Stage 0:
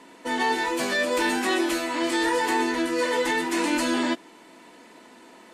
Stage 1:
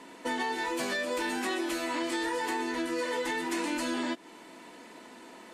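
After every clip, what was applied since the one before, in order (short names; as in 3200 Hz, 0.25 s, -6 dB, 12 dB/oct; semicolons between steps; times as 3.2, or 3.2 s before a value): compressor, threshold -29 dBFS, peak gain reduction 9.5 dB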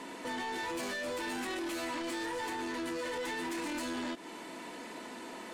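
limiter -29.5 dBFS, peak gain reduction 9 dB; soft clip -38.5 dBFS, distortion -11 dB; gain +5 dB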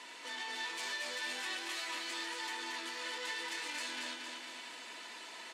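band-pass 3900 Hz, Q 0.73; flange 0.6 Hz, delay 8.8 ms, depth 4.7 ms, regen -64%; on a send: feedback echo 0.229 s, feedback 56%, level -4.5 dB; on the sum: gain +6.5 dB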